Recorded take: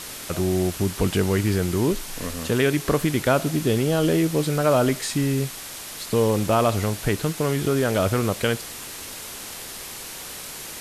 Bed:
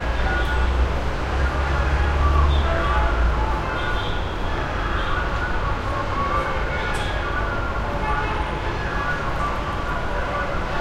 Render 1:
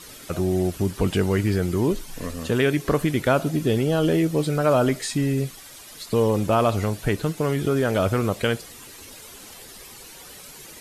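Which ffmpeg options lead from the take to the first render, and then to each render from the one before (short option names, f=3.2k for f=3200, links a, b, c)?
-af "afftdn=nr=11:nf=-37"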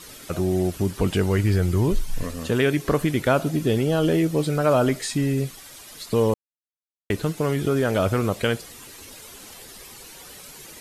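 -filter_complex "[0:a]asettb=1/sr,asplit=3[a][b][c];[a]atrim=end=1.074[d];[b]atrim=start=1.07:end=2.23,asetpts=PTS-STARTPTS,afade=t=in:d=0.004:c=qsin,afade=t=out:st=1.156:d=0.004:c=qsin,asubboost=boost=12:cutoff=120[e];[c]atrim=start=2.226[f];[d][e]acrossfade=d=0.004:c1=hsin:c2=qsin[g];[g][f]acrossfade=d=0.004:c1=qsin:c2=hsin,asplit=3[h][i][j];[h]atrim=end=6.34,asetpts=PTS-STARTPTS,afade=t=out:st=6.336:d=0.004:c=hsin[k];[i]atrim=start=6.34:end=7.1,asetpts=PTS-STARTPTS,volume=0[l];[j]atrim=start=7.1,asetpts=PTS-STARTPTS,afade=t=in:d=0.004:c=hsin[m];[k][l][m]concat=n=3:v=0:a=1"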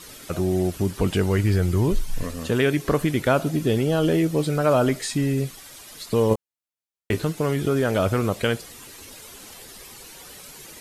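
-filter_complex "[0:a]asettb=1/sr,asplit=3[a][b][c];[a]atrim=end=6.294[d];[b]atrim=start=6.29:end=7.25,asetpts=PTS-STARTPTS,afade=t=in:d=0.004:c=qsin,afade=t=out:st=0.956:d=0.004:c=qsin,asplit=2[e][f];[f]adelay=18,volume=-4dB[g];[e][g]amix=inputs=2:normalize=0,atrim=end_sample=42336[h];[c]atrim=start=7.246[i];[d][h]acrossfade=d=0.004:c1=hsin:c2=qsin[j];[j][i]acrossfade=d=0.004:c1=qsin:c2=hsin"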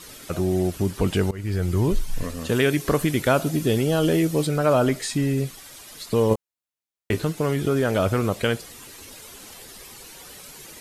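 -filter_complex "[0:a]asettb=1/sr,asplit=3[a][b][c];[a]atrim=end=2.494[d];[b]atrim=start=2.49:end=4.47,asetpts=PTS-STARTPTS,afade=t=in:d=0.004:c=qsin,afade=t=out:st=1.976:d=0.004:c=qsin,highshelf=f=4.4k:g=6[e];[c]atrim=start=4.466[f];[d][e]acrossfade=d=0.004:c1=hsin:c2=qsin[g];[g][f]acrossfade=d=0.004:c1=qsin:c2=hsin,asplit=2[h][i];[h]atrim=end=1.31,asetpts=PTS-STARTPTS,afade=t=out:st=1.306:d=0.004:c=hsin:silence=0.0749894[j];[i]atrim=start=1.31,asetpts=PTS-STARTPTS,afade=t=in:d=0.63:c=qsin:silence=0.0749894[k];[j][k]concat=n=2:v=0:a=1"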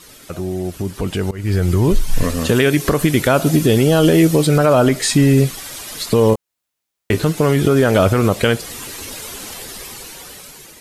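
-af "alimiter=limit=-15.5dB:level=0:latency=1:release=209,dynaudnorm=f=580:g=5:m=13dB"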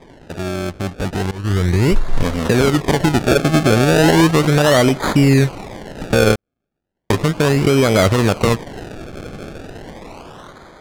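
-af "acrusher=samples=31:mix=1:aa=0.000001:lfo=1:lforange=31:lforate=0.35,adynamicsmooth=sensitivity=4:basefreq=5.7k"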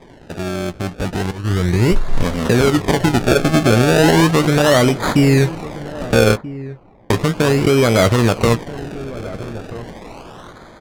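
-filter_complex "[0:a]asplit=2[a][b];[b]adelay=17,volume=-12.5dB[c];[a][c]amix=inputs=2:normalize=0,asplit=2[d][e];[e]adelay=1283,volume=-16dB,highshelf=f=4k:g=-28.9[f];[d][f]amix=inputs=2:normalize=0"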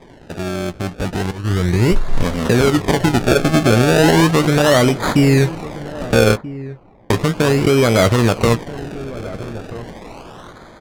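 -af anull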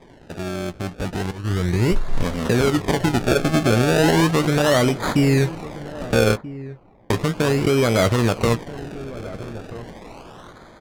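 -af "volume=-4.5dB"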